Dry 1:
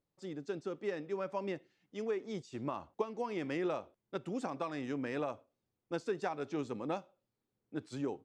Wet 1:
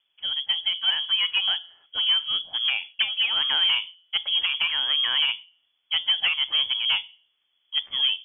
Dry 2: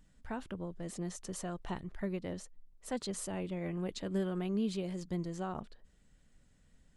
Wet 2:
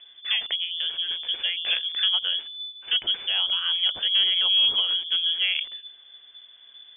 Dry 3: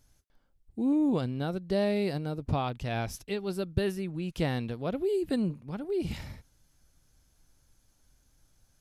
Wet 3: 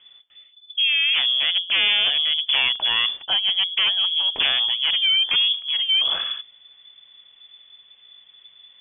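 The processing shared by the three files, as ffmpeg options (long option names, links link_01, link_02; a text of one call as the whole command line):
ffmpeg -i in.wav -af "aeval=exprs='0.2*sin(PI/2*4.47*val(0)/0.2)':channel_layout=same,bandreject=frequency=173.8:width_type=h:width=4,bandreject=frequency=347.6:width_type=h:width=4,bandreject=frequency=521.4:width_type=h:width=4,bandreject=frequency=695.2:width_type=h:width=4,lowpass=frequency=3000:width_type=q:width=0.5098,lowpass=frequency=3000:width_type=q:width=0.6013,lowpass=frequency=3000:width_type=q:width=0.9,lowpass=frequency=3000:width_type=q:width=2.563,afreqshift=-3500,volume=-2dB" out.wav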